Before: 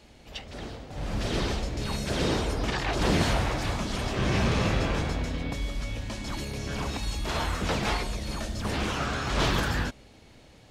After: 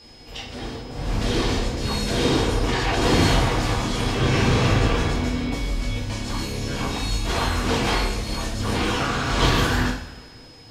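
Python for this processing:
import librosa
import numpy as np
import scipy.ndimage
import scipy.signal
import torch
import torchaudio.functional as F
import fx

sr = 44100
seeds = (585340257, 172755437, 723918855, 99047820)

y = fx.rev_double_slope(x, sr, seeds[0], early_s=0.47, late_s=1.7, knee_db=-17, drr_db=-5.0)
y = y + 10.0 ** (-48.0 / 20.0) * np.sin(2.0 * np.pi * 5100.0 * np.arange(len(y)) / sr)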